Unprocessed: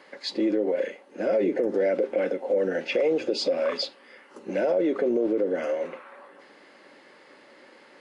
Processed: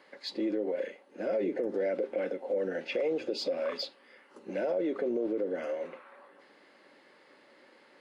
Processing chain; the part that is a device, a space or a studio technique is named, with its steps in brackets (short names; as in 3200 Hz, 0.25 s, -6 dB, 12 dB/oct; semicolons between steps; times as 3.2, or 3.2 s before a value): exciter from parts (in parallel at -12 dB: HPF 3600 Hz 24 dB/oct + soft clip -27 dBFS, distortion -14 dB + HPF 3900 Hz 24 dB/oct); on the sum: gain -7 dB